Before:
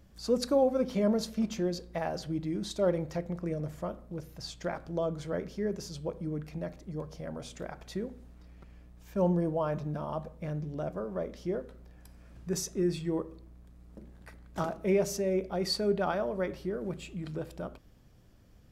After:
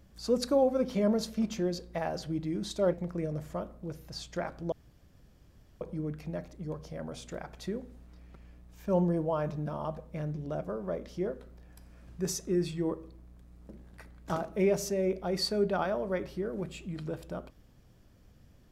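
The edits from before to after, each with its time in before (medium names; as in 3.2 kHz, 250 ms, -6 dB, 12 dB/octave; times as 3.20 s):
2.93–3.21 s: delete
5.00–6.09 s: room tone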